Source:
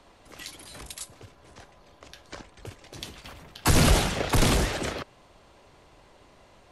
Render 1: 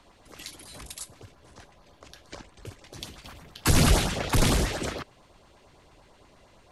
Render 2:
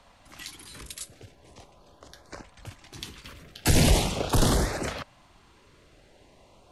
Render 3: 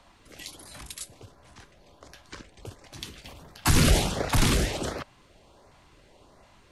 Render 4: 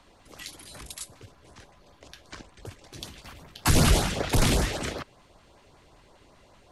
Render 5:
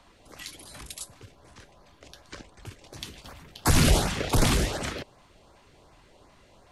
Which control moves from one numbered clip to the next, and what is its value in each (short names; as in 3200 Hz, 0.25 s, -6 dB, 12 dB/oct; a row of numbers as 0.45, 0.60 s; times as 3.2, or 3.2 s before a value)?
LFO notch, rate: 8.8, 0.41, 1.4, 5.2, 2.7 Hz